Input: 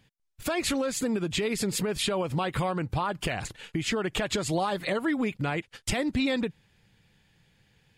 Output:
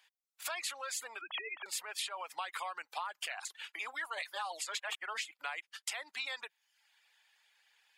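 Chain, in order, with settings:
0:01.21–0:01.66: three sine waves on the formant tracks
high-pass filter 830 Hz 24 dB per octave
0:03.79–0:05.31: reverse
reverb reduction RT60 0.6 s
downward compressor, threshold −36 dBFS, peak gain reduction 10 dB

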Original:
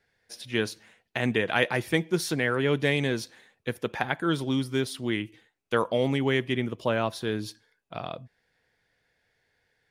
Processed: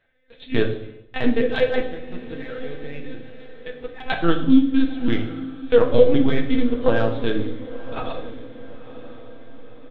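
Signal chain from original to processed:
phase distortion by the signal itself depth 0.21 ms
rotating-speaker cabinet horn 0.85 Hz, later 7 Hz, at 0:02.13
mains-hum notches 50/100/150 Hz
comb filter 3.9 ms, depth 97%
0:01.84–0:04.06: downward compressor 4 to 1, threshold −43 dBFS, peak gain reduction 21 dB
linear-prediction vocoder at 8 kHz pitch kept
transient designer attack +2 dB, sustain −8 dB
convolution reverb RT60 0.80 s, pre-delay 4 ms, DRR 2.5 dB
dynamic equaliser 2,100 Hz, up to −6 dB, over −46 dBFS, Q 2.5
feedback delay with all-pass diffusion 987 ms, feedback 49%, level −15.5 dB
level +4.5 dB

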